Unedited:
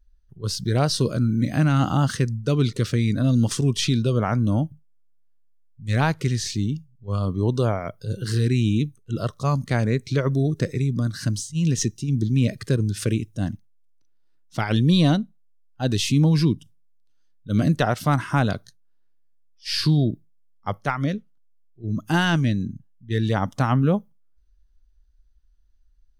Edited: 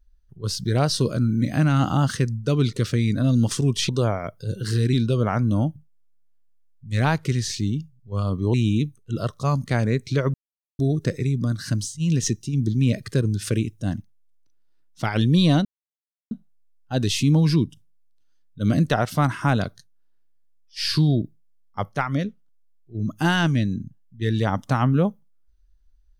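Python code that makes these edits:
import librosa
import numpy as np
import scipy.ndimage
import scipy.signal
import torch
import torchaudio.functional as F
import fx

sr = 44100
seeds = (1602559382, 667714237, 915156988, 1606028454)

y = fx.edit(x, sr, fx.move(start_s=7.5, length_s=1.04, to_s=3.89),
    fx.insert_silence(at_s=10.34, length_s=0.45),
    fx.insert_silence(at_s=15.2, length_s=0.66), tone=tone)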